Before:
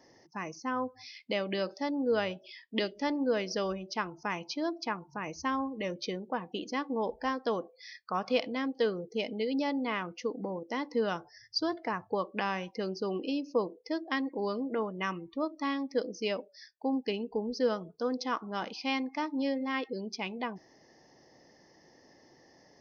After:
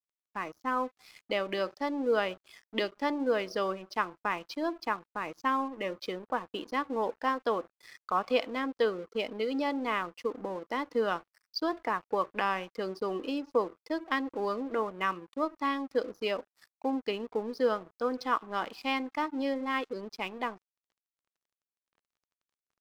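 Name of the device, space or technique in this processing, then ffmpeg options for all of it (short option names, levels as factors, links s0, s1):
pocket radio on a weak battery: -af "highpass=260,lowpass=3900,aeval=exprs='sgn(val(0))*max(abs(val(0))-0.00224,0)':c=same,equalizer=f=1200:t=o:w=0.46:g=5,volume=1.26"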